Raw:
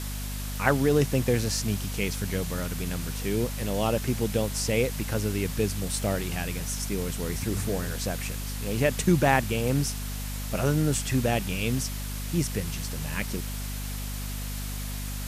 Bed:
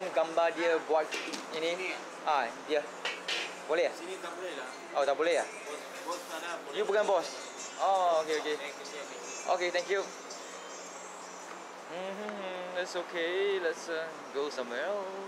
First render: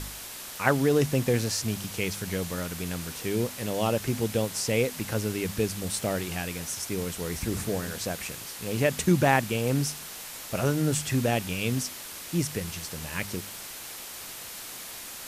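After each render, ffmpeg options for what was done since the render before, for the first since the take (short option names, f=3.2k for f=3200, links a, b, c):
-af "bandreject=f=50:t=h:w=4,bandreject=f=100:t=h:w=4,bandreject=f=150:t=h:w=4,bandreject=f=200:t=h:w=4,bandreject=f=250:t=h:w=4"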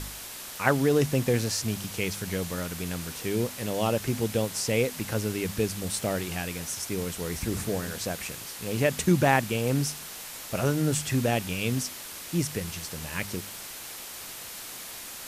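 -af anull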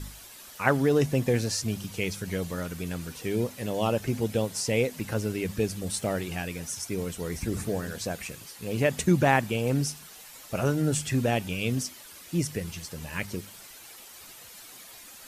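-af "afftdn=nr=10:nf=-41"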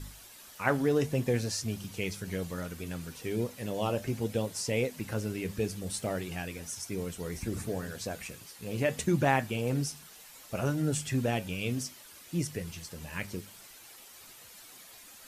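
-af "flanger=delay=7.2:depth=4:regen=-72:speed=0.64:shape=sinusoidal"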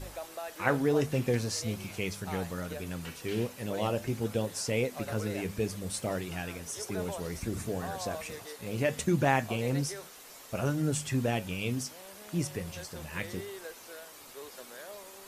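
-filter_complex "[1:a]volume=-12.5dB[a];[0:a][a]amix=inputs=2:normalize=0"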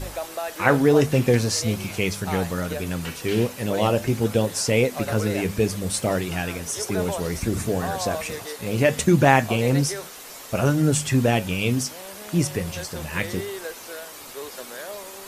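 -af "volume=10dB,alimiter=limit=-2dB:level=0:latency=1"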